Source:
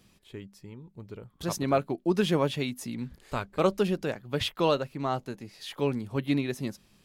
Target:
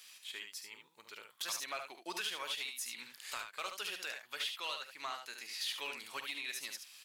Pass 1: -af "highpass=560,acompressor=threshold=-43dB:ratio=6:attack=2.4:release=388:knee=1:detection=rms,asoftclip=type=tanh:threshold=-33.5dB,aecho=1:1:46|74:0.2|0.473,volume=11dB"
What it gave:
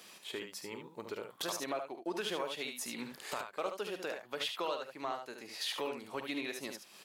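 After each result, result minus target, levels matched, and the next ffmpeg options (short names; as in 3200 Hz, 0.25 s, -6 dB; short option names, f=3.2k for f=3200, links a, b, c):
500 Hz band +11.5 dB; soft clip: distortion -11 dB
-af "highpass=2k,acompressor=threshold=-43dB:ratio=6:attack=2.4:release=388:knee=1:detection=rms,asoftclip=type=tanh:threshold=-33.5dB,aecho=1:1:46|74:0.2|0.473,volume=11dB"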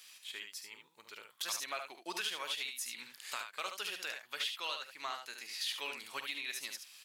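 soft clip: distortion -12 dB
-af "highpass=2k,acompressor=threshold=-43dB:ratio=6:attack=2.4:release=388:knee=1:detection=rms,asoftclip=type=tanh:threshold=-41dB,aecho=1:1:46|74:0.2|0.473,volume=11dB"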